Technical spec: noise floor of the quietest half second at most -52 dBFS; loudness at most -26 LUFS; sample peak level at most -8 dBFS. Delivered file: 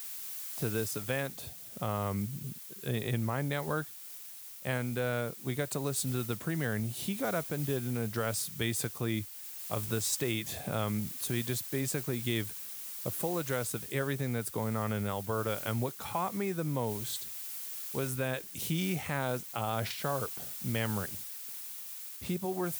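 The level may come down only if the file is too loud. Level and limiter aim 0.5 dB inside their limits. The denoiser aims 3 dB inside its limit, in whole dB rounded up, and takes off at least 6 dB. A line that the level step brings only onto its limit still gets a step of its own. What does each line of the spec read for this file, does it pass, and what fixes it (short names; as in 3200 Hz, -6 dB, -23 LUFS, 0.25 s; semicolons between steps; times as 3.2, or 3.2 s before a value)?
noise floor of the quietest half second -47 dBFS: fail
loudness -34.0 LUFS: OK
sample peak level -16.5 dBFS: OK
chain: denoiser 8 dB, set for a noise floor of -47 dBFS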